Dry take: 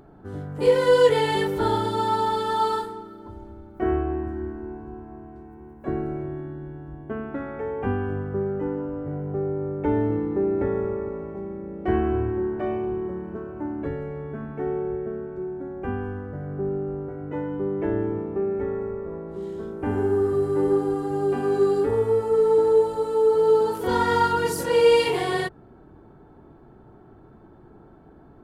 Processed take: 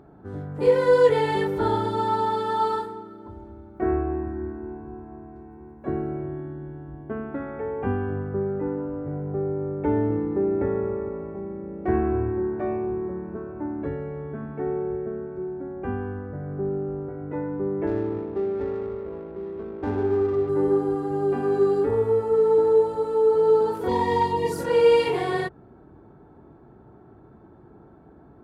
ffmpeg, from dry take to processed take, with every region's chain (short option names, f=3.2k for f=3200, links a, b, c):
-filter_complex "[0:a]asettb=1/sr,asplit=3[a][b][c];[a]atrim=end=17.874[d];[b]atrim=start=17.87:end=20.49,asetpts=PTS-STARTPTS,afade=t=in:d=0.004:c=qsin,afade=t=out:st=2.616:d=0.004:c=qsin,equalizer=f=160:t=o:w=0.75:g=-6.5,adynamicsmooth=sensitivity=8:basefreq=540[e];[c]atrim=start=20.486[f];[d][e]acrossfade=d=0.004:c1=hsin:c2=qsin[g];[g][f]acrossfade=d=0.004:c1=qsin:c2=hsin,asettb=1/sr,asplit=3[h][i][j];[h]atrim=end=23.884[k];[i]atrim=start=23.88:end=24.52,asetpts=PTS-STARTPTS,afade=t=in:d=0.004:c=qsin,afade=t=out:st=0.636:d=0.004:c=qsin,asuperstop=centerf=1500:order=8:qfactor=2.9,asoftclip=type=hard:threshold=-14dB[l];[j]atrim=start=24.516[m];[k][l]acrossfade=d=0.004:c1=hsin:c2=qsin[n];[n][m]acrossfade=d=0.004:c1=qsin:c2=hsin,highpass=49,highshelf=f=3.5k:g=-9.5,bandreject=f=3k:w=18"